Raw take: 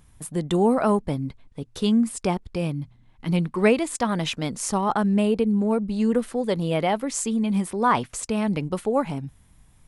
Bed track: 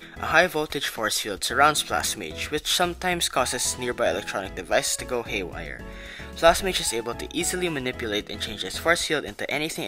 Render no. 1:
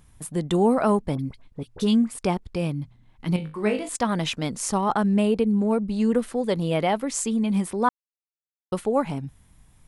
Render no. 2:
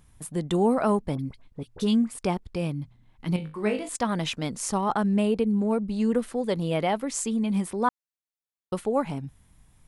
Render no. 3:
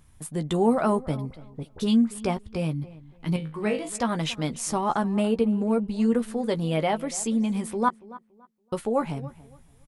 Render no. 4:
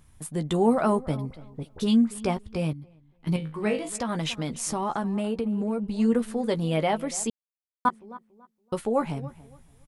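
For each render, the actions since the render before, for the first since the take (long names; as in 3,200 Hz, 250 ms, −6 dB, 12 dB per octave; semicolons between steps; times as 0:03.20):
0:01.15–0:02.19: all-pass dispersion highs, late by 45 ms, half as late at 1,600 Hz; 0:03.36–0:03.89: tuned comb filter 52 Hz, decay 0.3 s, mix 90%; 0:07.89–0:08.72: silence
level −2.5 dB
double-tracking delay 13 ms −8.5 dB; feedback echo with a low-pass in the loop 283 ms, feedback 24%, low-pass 2,600 Hz, level −18.5 dB
0:02.73–0:03.27: clip gain −10.5 dB; 0:03.89–0:05.92: downward compressor 4 to 1, threshold −24 dBFS; 0:07.30–0:07.85: silence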